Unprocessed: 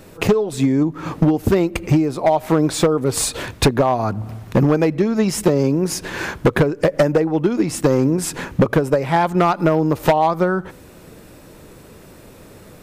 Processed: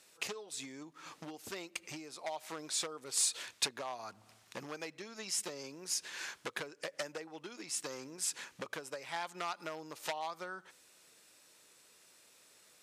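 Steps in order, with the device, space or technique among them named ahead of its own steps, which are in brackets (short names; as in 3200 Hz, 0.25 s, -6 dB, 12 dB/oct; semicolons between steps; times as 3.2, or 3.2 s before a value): piezo pickup straight into a mixer (LPF 7000 Hz 12 dB/oct; differentiator); gain -5 dB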